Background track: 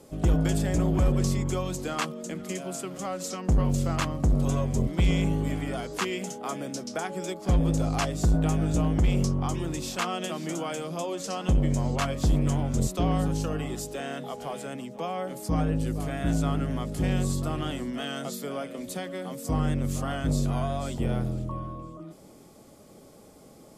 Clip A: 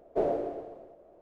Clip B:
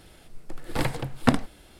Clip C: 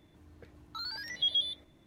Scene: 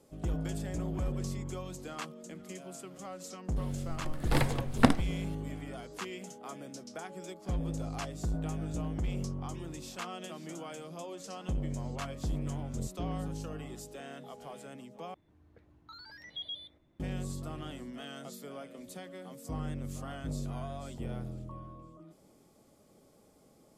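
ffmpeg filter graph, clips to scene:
ffmpeg -i bed.wav -i cue0.wav -i cue1.wav -i cue2.wav -filter_complex "[0:a]volume=-11dB[link_01];[3:a]highshelf=frequency=3400:gain=-10.5[link_02];[link_01]asplit=2[link_03][link_04];[link_03]atrim=end=15.144[link_05];[link_02]atrim=end=1.86,asetpts=PTS-STARTPTS,volume=-6.5dB[link_06];[link_04]atrim=start=16.996[link_07];[2:a]atrim=end=1.79,asetpts=PTS-STARTPTS,volume=-2dB,afade=type=in:duration=0.004:curve=hsin,afade=type=out:start_time=1.786:duration=0.004:curve=hsin,adelay=3560[link_08];[link_05][link_06]acrossfade=duration=0.004:curve1=hsin:curve2=hsin[link_09];[link_09][link_07]acrossfade=duration=0.004:curve1=hsin:curve2=hsin[link_10];[link_10][link_08]amix=inputs=2:normalize=0" out.wav

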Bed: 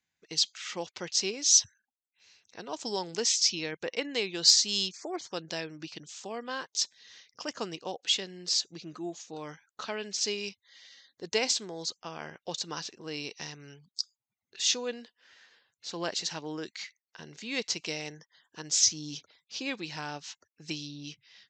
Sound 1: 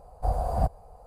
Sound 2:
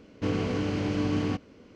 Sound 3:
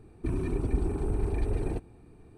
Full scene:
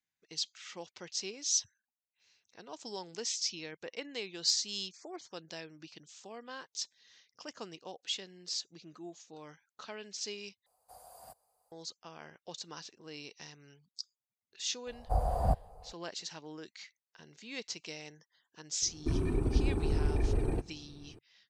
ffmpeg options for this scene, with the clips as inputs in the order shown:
ffmpeg -i bed.wav -i cue0.wav -i cue1.wav -i cue2.wav -filter_complex "[1:a]asplit=2[link_01][link_02];[0:a]volume=-9dB[link_03];[link_01]aderivative[link_04];[link_03]asplit=2[link_05][link_06];[link_05]atrim=end=10.664[link_07];[link_04]atrim=end=1.06,asetpts=PTS-STARTPTS,volume=-4.5dB[link_08];[link_06]atrim=start=11.716[link_09];[link_02]atrim=end=1.06,asetpts=PTS-STARTPTS,volume=-3.5dB,afade=type=in:duration=0.004:curve=hsin,afade=type=out:start_time=1.056:duration=0.004:curve=hsin,adelay=14870[link_10];[3:a]atrim=end=2.37,asetpts=PTS-STARTPTS,volume=-1dB,afade=type=in:duration=0.004:curve=hsin,afade=type=out:start_time=2.366:duration=0.004:curve=hsin,adelay=18820[link_11];[link_07][link_08]acrossfade=duration=0.004:curve1=hsin:curve2=hsin[link_12];[link_12][link_09]acrossfade=duration=0.004:curve1=hsin:curve2=hsin[link_13];[link_13][link_10][link_11]amix=inputs=3:normalize=0" out.wav

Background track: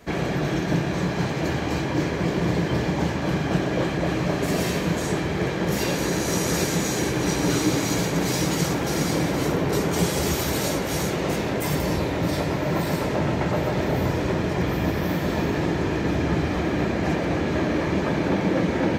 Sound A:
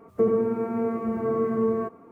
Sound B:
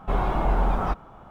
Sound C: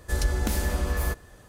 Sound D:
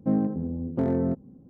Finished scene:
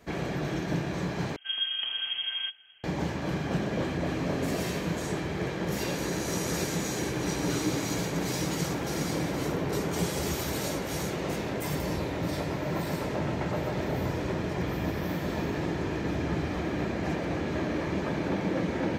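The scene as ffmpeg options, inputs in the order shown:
ffmpeg -i bed.wav -i cue0.wav -i cue1.wav -i cue2.wav -i cue3.wav -filter_complex "[0:a]volume=-7dB[link_01];[3:a]lowpass=frequency=2800:width_type=q:width=0.5098,lowpass=frequency=2800:width_type=q:width=0.6013,lowpass=frequency=2800:width_type=q:width=0.9,lowpass=frequency=2800:width_type=q:width=2.563,afreqshift=-3300[link_02];[4:a]acompressor=threshold=-26dB:ratio=6:attack=3.2:release=140:knee=1:detection=peak[link_03];[link_01]asplit=2[link_04][link_05];[link_04]atrim=end=1.364[link_06];[link_02]atrim=end=1.48,asetpts=PTS-STARTPTS,volume=-7dB[link_07];[link_05]atrim=start=2.836[link_08];[link_03]atrim=end=1.49,asetpts=PTS-STARTPTS,volume=-5.5dB,afade=type=in:duration=0.004:curve=hsin,afade=type=out:start_time=1.486:duration=0.004:curve=hsin,adelay=3430[link_09];[link_06][link_07]acrossfade=duration=0.004:curve1=hsin:curve2=hsin[link_10];[link_10][link_08]acrossfade=duration=0.004:curve1=hsin:curve2=hsin[link_11];[link_11][link_09]amix=inputs=2:normalize=0" out.wav

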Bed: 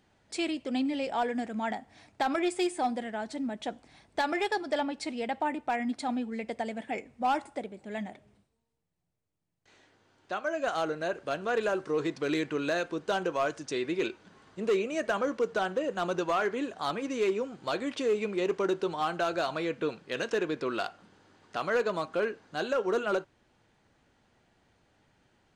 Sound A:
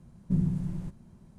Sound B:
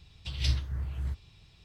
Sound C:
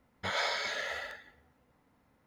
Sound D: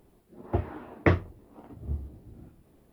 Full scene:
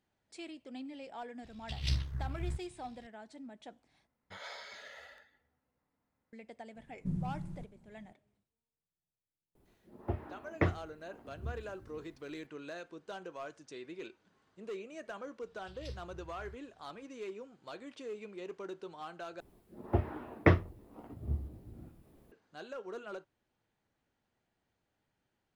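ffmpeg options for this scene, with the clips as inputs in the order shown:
ffmpeg -i bed.wav -i cue0.wav -i cue1.wav -i cue2.wav -i cue3.wav -filter_complex "[2:a]asplit=2[link_01][link_02];[4:a]asplit=2[link_03][link_04];[0:a]volume=-15dB[link_05];[link_01]tremolo=f=68:d=0.621[link_06];[link_05]asplit=3[link_07][link_08][link_09];[link_07]atrim=end=4.074[link_10];[3:a]atrim=end=2.26,asetpts=PTS-STARTPTS,volume=-14.5dB[link_11];[link_08]atrim=start=6.326:end=19.404[link_12];[link_04]atrim=end=2.92,asetpts=PTS-STARTPTS,volume=-2dB[link_13];[link_09]atrim=start=22.316[link_14];[link_06]atrim=end=1.64,asetpts=PTS-STARTPTS,volume=-1.5dB,afade=type=in:duration=0.004:curve=hsin,afade=type=out:start_time=1.636:duration=0.004:curve=hsin,adelay=1430[link_15];[1:a]atrim=end=1.38,asetpts=PTS-STARTPTS,volume=-9.5dB,afade=type=in:duration=0.004:curve=hsin,afade=type=out:start_time=1.376:duration=0.004:curve=hsin,adelay=6750[link_16];[link_03]atrim=end=2.92,asetpts=PTS-STARTPTS,volume=-8dB,afade=type=in:duration=0.004:curve=hsin,afade=type=out:start_time=2.916:duration=0.004:curve=hsin,adelay=9550[link_17];[link_02]atrim=end=1.64,asetpts=PTS-STARTPTS,volume=-18dB,afade=type=in:duration=0.004:curve=hsin,afade=type=out:start_time=1.636:duration=0.004:curve=hsin,adelay=15410[link_18];[link_10][link_11]acrossfade=duration=0.004:curve1=hsin:curve2=hsin[link_19];[link_19][link_12]acrossfade=duration=0.004:curve1=hsin:curve2=hsin[link_20];[link_20][link_13]acrossfade=duration=0.004:curve1=hsin:curve2=hsin[link_21];[link_21][link_14]acrossfade=duration=0.004:curve1=hsin:curve2=hsin[link_22];[link_22][link_15][link_16][link_17][link_18]amix=inputs=5:normalize=0" out.wav

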